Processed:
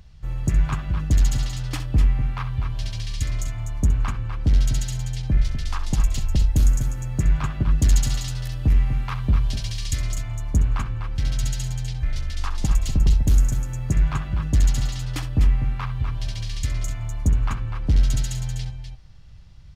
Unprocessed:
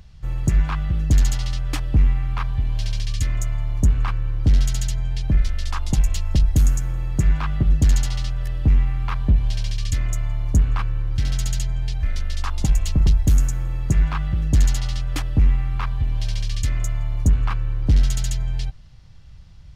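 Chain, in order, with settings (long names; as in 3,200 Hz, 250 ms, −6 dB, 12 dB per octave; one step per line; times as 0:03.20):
0:07.78–0:10.13: high-shelf EQ 4,000 Hz +6.5 dB
multi-tap delay 65/248/256 ms −12/−9/−13.5 dB
level −2.5 dB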